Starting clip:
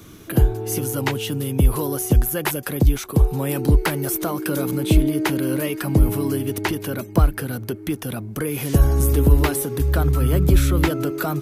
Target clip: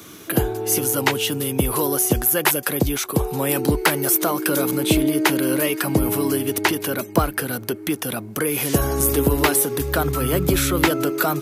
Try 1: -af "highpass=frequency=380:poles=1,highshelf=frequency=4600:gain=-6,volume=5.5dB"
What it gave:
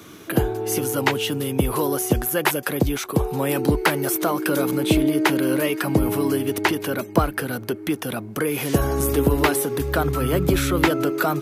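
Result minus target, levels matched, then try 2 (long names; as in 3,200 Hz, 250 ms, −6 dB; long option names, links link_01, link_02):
8,000 Hz band −5.0 dB
-af "highpass=frequency=380:poles=1,highshelf=frequency=4600:gain=2,volume=5.5dB"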